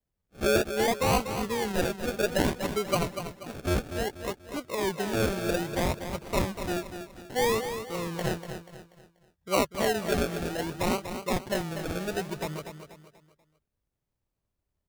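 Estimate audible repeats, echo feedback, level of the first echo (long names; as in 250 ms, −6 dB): 4, 38%, −9.0 dB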